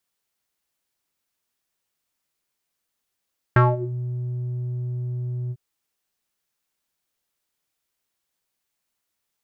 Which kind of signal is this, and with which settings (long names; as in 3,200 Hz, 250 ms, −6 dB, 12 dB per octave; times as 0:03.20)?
subtractive voice square B2 12 dB per octave, low-pass 210 Hz, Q 4.7, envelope 3 octaves, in 0.37 s, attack 2.3 ms, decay 0.20 s, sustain −17 dB, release 0.05 s, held 1.95 s